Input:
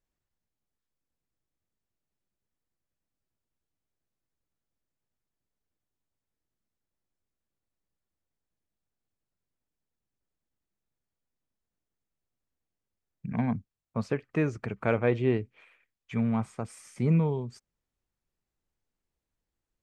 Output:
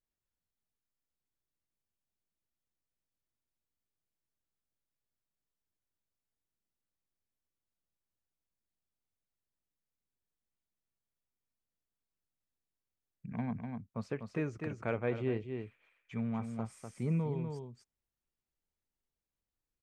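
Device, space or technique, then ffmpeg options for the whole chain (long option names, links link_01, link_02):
ducked delay: -filter_complex "[0:a]asplit=3[link_01][link_02][link_03];[link_02]adelay=248,volume=-4.5dB[link_04];[link_03]apad=whole_len=885343[link_05];[link_04][link_05]sidechaincompress=threshold=-28dB:ratio=8:attack=49:release=443[link_06];[link_01][link_06]amix=inputs=2:normalize=0,volume=-8.5dB"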